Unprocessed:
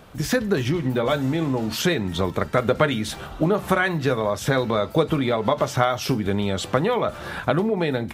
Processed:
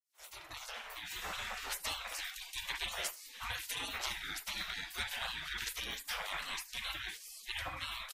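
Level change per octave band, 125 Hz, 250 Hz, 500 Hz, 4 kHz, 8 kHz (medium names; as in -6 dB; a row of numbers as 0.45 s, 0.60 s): -31.5 dB, -36.5 dB, -32.5 dB, -7.0 dB, -7.0 dB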